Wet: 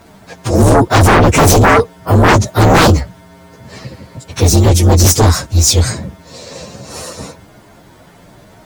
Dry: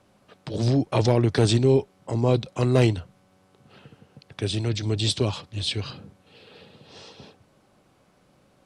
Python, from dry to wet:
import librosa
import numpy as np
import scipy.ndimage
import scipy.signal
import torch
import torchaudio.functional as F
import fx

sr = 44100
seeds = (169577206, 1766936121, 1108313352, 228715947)

y = fx.partial_stretch(x, sr, pct=119)
y = fx.fold_sine(y, sr, drive_db=15, ceiling_db=-8.0)
y = y * 10.0 ** (4.0 / 20.0)